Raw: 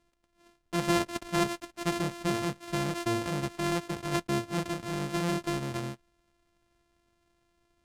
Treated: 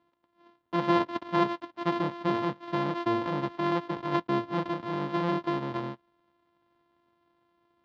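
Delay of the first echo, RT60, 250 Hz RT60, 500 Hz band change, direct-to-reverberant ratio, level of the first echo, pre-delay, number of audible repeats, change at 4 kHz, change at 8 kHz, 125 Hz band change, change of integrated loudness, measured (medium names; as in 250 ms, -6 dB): no echo, no reverb, no reverb, +2.5 dB, no reverb, no echo, no reverb, no echo, -3.5 dB, under -20 dB, -2.0 dB, +1.5 dB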